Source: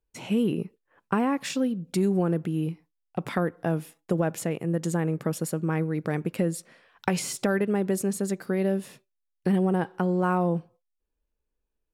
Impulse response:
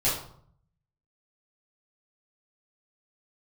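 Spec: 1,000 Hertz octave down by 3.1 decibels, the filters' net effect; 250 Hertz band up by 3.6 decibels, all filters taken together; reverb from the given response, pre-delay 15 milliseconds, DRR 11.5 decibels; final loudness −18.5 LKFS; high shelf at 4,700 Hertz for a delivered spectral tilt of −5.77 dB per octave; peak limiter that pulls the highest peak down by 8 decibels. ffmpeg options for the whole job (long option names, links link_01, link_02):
-filter_complex "[0:a]equalizer=frequency=250:width_type=o:gain=5.5,equalizer=frequency=1000:width_type=o:gain=-5,highshelf=frequency=4700:gain=5.5,alimiter=limit=-15.5dB:level=0:latency=1,asplit=2[link_01][link_02];[1:a]atrim=start_sample=2205,adelay=15[link_03];[link_02][link_03]afir=irnorm=-1:irlink=0,volume=-22.5dB[link_04];[link_01][link_04]amix=inputs=2:normalize=0,volume=7dB"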